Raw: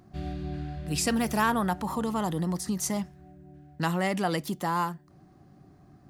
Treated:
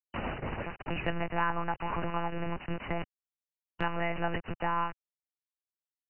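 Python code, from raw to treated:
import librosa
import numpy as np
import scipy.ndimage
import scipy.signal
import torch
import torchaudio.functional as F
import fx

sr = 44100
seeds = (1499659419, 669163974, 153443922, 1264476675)

y = fx.low_shelf(x, sr, hz=290.0, db=-11.0)
y = fx.quant_dither(y, sr, seeds[0], bits=6, dither='none')
y = fx.lpc_monotone(y, sr, seeds[1], pitch_hz=170.0, order=8)
y = fx.brickwall_lowpass(y, sr, high_hz=3000.0)
y = fx.band_squash(y, sr, depth_pct=70)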